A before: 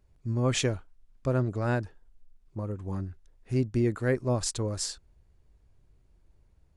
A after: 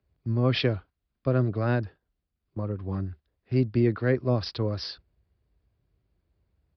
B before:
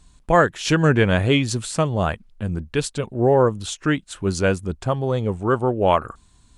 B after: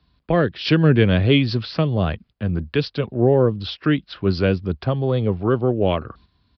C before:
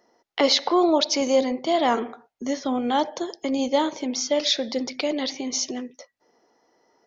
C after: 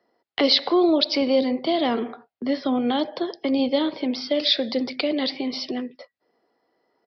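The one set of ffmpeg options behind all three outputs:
-filter_complex "[0:a]highpass=f=52:w=0.5412,highpass=f=52:w=1.3066,bandreject=f=890:w=12,agate=range=-8dB:threshold=-47dB:ratio=16:detection=peak,acrossover=split=150|500|2400[a][b][c][d];[c]acompressor=threshold=-31dB:ratio=6[e];[a][b][e][d]amix=inputs=4:normalize=0,aresample=11025,aresample=44100,volume=3dB"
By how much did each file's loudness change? +2.5, +0.5, +0.5 LU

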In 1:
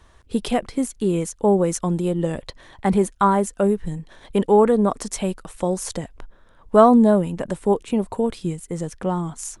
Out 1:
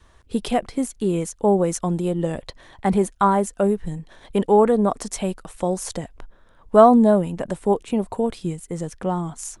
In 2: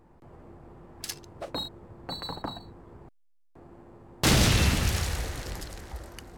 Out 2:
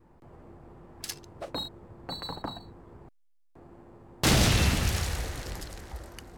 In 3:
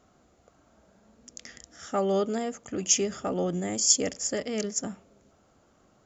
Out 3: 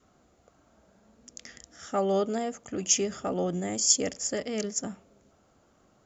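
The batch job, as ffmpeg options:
-af "adynamicequalizer=threshold=0.02:dfrequency=710:dqfactor=3.6:tfrequency=710:tqfactor=3.6:attack=5:release=100:ratio=0.375:range=2:mode=boostabove:tftype=bell,volume=-1dB"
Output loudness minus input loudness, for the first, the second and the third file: -0.5, -1.0, -1.0 LU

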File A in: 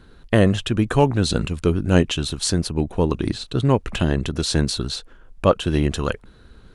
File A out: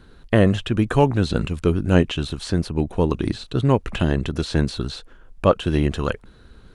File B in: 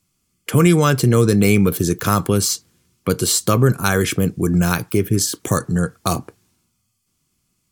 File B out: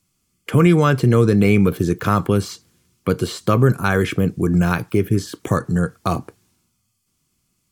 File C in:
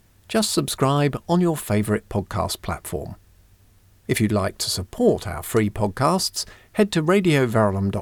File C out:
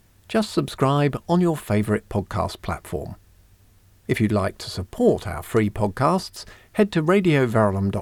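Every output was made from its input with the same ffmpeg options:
-filter_complex "[0:a]acrossover=split=3300[a][b];[b]acompressor=threshold=-38dB:ratio=4:attack=1:release=60[c];[a][c]amix=inputs=2:normalize=0"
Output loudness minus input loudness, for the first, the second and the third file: -0.5, -0.5, -0.5 LU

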